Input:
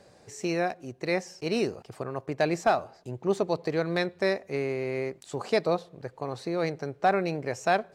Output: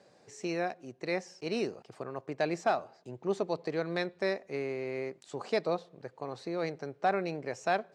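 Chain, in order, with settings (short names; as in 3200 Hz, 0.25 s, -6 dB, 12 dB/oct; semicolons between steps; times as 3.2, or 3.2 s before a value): BPF 150–7700 Hz; gain -5 dB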